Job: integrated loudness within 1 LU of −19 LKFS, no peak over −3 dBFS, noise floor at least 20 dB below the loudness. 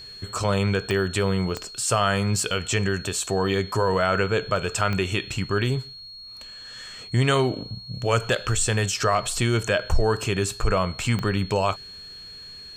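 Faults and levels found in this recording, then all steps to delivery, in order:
number of clicks 4; interfering tone 4,300 Hz; level of the tone −39 dBFS; integrated loudness −24.0 LKFS; sample peak −7.0 dBFS; target loudness −19.0 LKFS
→ click removal
notch filter 4,300 Hz, Q 30
level +5 dB
brickwall limiter −3 dBFS

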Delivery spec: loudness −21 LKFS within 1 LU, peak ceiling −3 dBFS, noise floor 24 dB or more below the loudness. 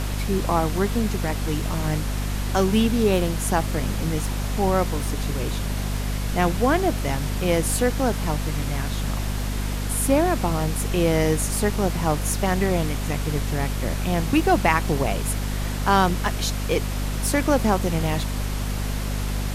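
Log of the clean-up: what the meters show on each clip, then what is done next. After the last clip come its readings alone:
mains hum 50 Hz; hum harmonics up to 250 Hz; level of the hum −24 dBFS; background noise floor −27 dBFS; target noise floor −48 dBFS; integrated loudness −23.5 LKFS; sample peak −5.0 dBFS; target loudness −21.0 LKFS
→ hum removal 50 Hz, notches 5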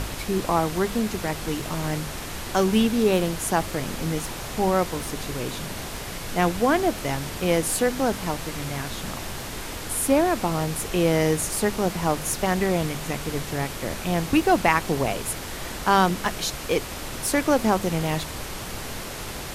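mains hum none found; background noise floor −34 dBFS; target noise floor −49 dBFS
→ noise reduction from a noise print 15 dB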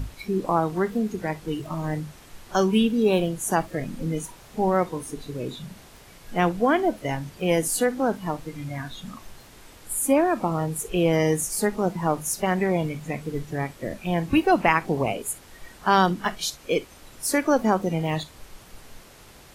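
background noise floor −49 dBFS; integrated loudness −25.0 LKFS; sample peak −5.5 dBFS; target loudness −21.0 LKFS
→ level +4 dB
brickwall limiter −3 dBFS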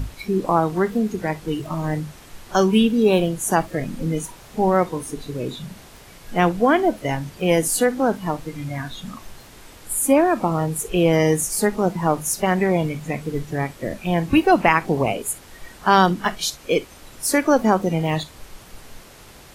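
integrated loudness −21.0 LKFS; sample peak −3.0 dBFS; background noise floor −45 dBFS

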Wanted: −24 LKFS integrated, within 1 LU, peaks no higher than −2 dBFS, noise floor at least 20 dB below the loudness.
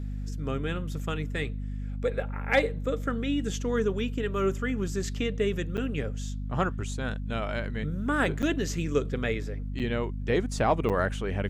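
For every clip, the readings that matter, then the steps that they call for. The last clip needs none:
number of dropouts 4; longest dropout 7.8 ms; mains hum 50 Hz; hum harmonics up to 250 Hz; level of the hum −31 dBFS; integrated loudness −30.0 LKFS; sample peak −11.5 dBFS; target loudness −24.0 LKFS
→ repair the gap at 0:05.77/0:08.42/0:09.79/0:10.89, 7.8 ms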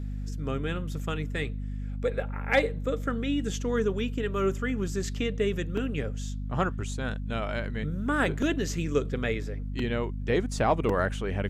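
number of dropouts 0; mains hum 50 Hz; hum harmonics up to 250 Hz; level of the hum −31 dBFS
→ mains-hum notches 50/100/150/200/250 Hz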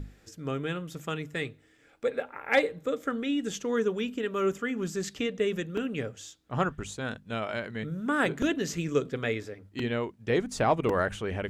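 mains hum none found; integrated loudness −30.5 LKFS; sample peak −12.0 dBFS; target loudness −24.0 LKFS
→ level +6.5 dB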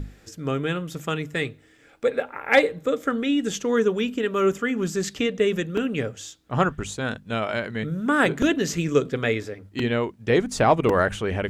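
integrated loudness −24.0 LKFS; sample peak −5.5 dBFS; background noise floor −54 dBFS

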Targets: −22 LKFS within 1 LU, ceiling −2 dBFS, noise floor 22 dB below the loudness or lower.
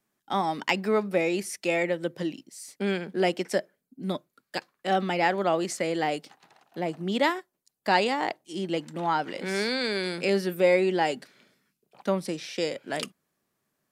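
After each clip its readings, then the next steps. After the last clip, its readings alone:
integrated loudness −28.0 LKFS; sample peak −7.0 dBFS; target loudness −22.0 LKFS
→ level +6 dB
brickwall limiter −2 dBFS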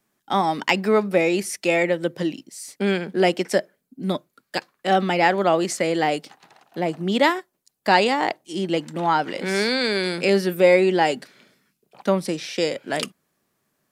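integrated loudness −22.0 LKFS; sample peak −2.0 dBFS; background noise floor −75 dBFS

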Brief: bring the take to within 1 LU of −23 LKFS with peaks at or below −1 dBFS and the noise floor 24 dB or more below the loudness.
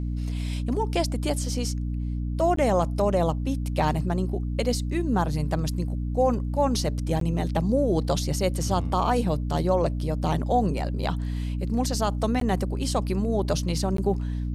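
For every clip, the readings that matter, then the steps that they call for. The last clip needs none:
number of dropouts 4; longest dropout 13 ms; mains hum 60 Hz; hum harmonics up to 300 Hz; level of the hum −26 dBFS; integrated loudness −26.0 LKFS; sample peak −11.0 dBFS; target loudness −23.0 LKFS
→ repair the gap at 0:02.56/0:07.20/0:12.40/0:13.97, 13 ms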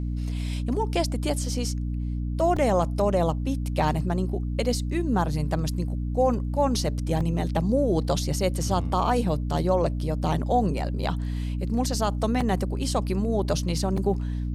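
number of dropouts 0; mains hum 60 Hz; hum harmonics up to 300 Hz; level of the hum −26 dBFS
→ mains-hum notches 60/120/180/240/300 Hz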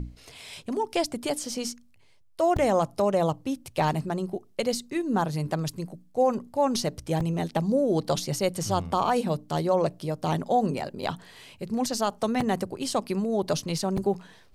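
mains hum none found; integrated loudness −27.5 LKFS; sample peak −12.5 dBFS; target loudness −23.0 LKFS
→ level +4.5 dB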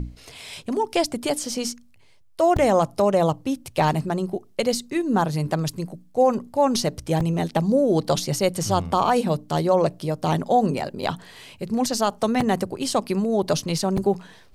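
integrated loudness −23.0 LKFS; sample peak −8.0 dBFS; background noise floor −52 dBFS

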